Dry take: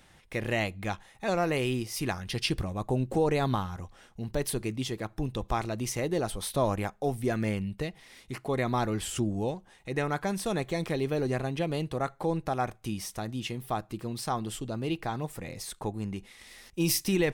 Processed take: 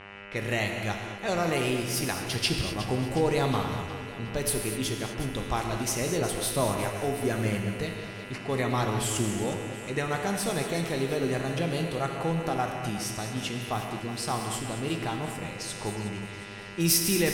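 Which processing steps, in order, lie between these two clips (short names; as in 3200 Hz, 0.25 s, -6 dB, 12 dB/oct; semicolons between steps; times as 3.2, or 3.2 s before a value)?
buzz 100 Hz, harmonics 30, -46 dBFS -1 dB/oct; high shelf 3600 Hz +7 dB; non-linear reverb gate 0.27 s flat, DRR 3.5 dB; low-pass opened by the level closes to 2600 Hz, open at -26 dBFS; split-band echo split 300 Hz, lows 0.504 s, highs 0.363 s, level -13 dB; gain -1 dB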